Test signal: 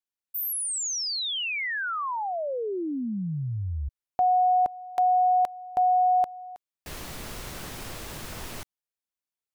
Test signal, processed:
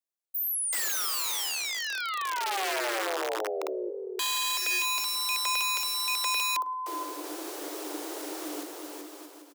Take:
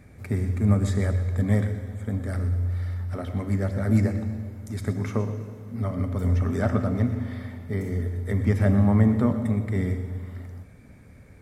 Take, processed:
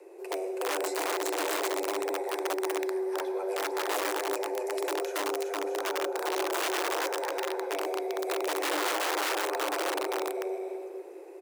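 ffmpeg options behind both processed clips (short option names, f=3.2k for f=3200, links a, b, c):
-filter_complex "[0:a]equalizer=f=1.9k:t=o:w=2:g=-7,acrossover=split=320|820[a][b][c];[a]acompressor=threshold=-35dB:ratio=5:attack=2.2:release=20:knee=6:detection=peak[d];[d][b][c]amix=inputs=3:normalize=0,aecho=1:1:380|627|787.6|891.9|959.7:0.631|0.398|0.251|0.158|0.1,aeval=exprs='(mod(16.8*val(0)+1,2)-1)/16.8':c=same,afreqshift=290"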